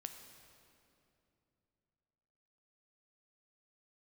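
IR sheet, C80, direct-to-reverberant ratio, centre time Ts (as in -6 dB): 8.0 dB, 6.0 dB, 40 ms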